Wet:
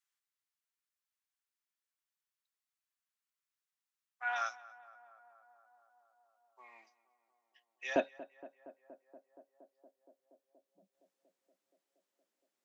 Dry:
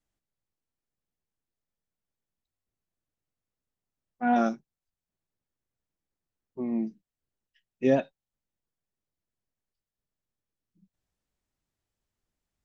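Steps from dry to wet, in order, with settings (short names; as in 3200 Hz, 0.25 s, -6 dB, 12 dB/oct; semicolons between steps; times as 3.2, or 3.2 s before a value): HPF 1100 Hz 24 dB/oct, from 7.96 s 280 Hz; tape echo 0.235 s, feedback 89%, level -16.5 dB, low-pass 1500 Hz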